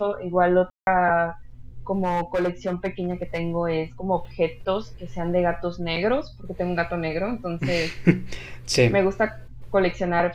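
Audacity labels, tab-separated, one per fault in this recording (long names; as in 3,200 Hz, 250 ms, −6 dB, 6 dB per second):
0.700000	0.870000	drop-out 171 ms
2.030000	3.390000	clipping −19 dBFS
4.250000	4.250000	drop-out 3.1 ms
5.960000	5.970000	drop-out 5.1 ms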